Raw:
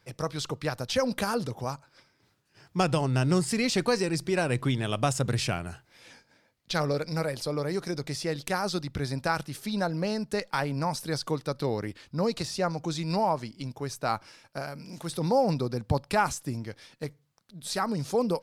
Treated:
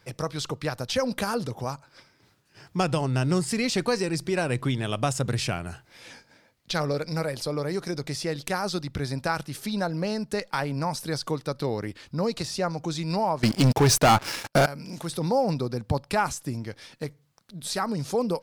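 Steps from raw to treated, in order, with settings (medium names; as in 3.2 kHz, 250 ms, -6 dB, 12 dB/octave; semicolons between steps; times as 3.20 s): in parallel at +1.5 dB: compression, threshold -40 dBFS, peak gain reduction 19 dB; 13.43–14.66 s: on the sum: waveshaping leveller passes 5; trim -1 dB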